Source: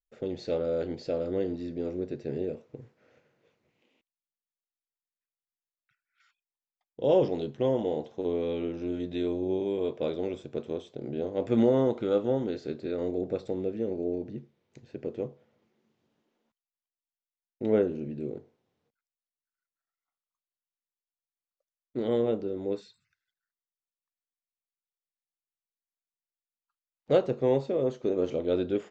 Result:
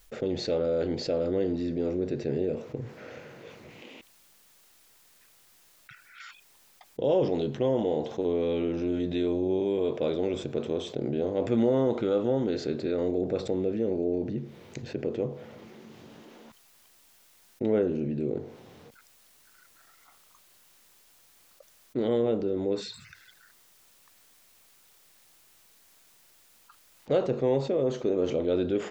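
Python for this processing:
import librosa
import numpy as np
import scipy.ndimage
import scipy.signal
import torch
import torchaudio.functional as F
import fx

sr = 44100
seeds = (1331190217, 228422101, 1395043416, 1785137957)

y = fx.env_flatten(x, sr, amount_pct=50)
y = F.gain(torch.from_numpy(y), -3.0).numpy()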